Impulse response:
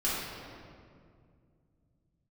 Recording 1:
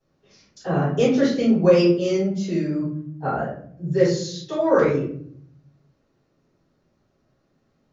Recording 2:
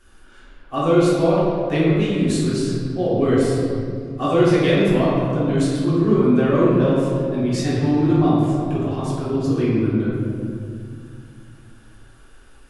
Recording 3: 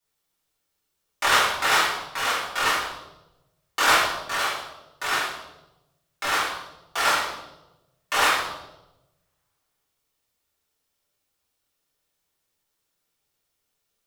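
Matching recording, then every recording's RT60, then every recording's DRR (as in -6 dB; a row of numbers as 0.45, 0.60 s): 2; 0.60, 2.2, 0.95 s; -11.5, -10.0, -10.5 dB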